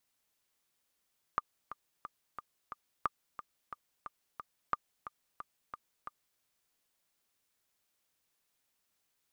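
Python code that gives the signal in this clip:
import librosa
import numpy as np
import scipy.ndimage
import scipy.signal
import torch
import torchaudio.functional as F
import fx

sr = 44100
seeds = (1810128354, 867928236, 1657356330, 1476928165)

y = fx.click_track(sr, bpm=179, beats=5, bars=3, hz=1200.0, accent_db=12.5, level_db=-16.5)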